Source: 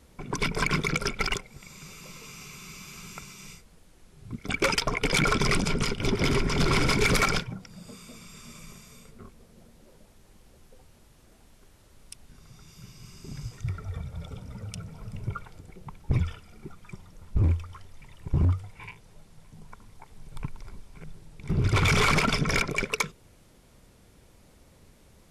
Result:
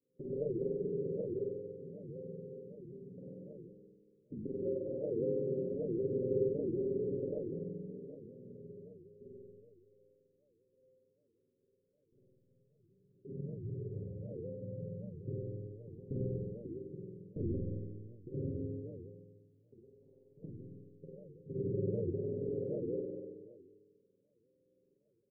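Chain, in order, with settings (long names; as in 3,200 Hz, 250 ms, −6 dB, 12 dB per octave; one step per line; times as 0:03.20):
high-pass filter 360 Hz 12 dB per octave
noise gate −50 dBFS, range −19 dB
spectral tilt −2.5 dB per octave
comb filter 7.3 ms, depth 64%
downward compressor 5 to 1, threshold −35 dBFS, peak gain reduction 15 dB
shaped tremolo saw up 4.7 Hz, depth 50%
Chebyshev low-pass with heavy ripple 540 Hz, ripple 3 dB
flutter between parallel walls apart 8.3 metres, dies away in 1.2 s
four-comb reverb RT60 1.5 s, combs from 29 ms, DRR −2.5 dB
wow of a warped record 78 rpm, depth 250 cents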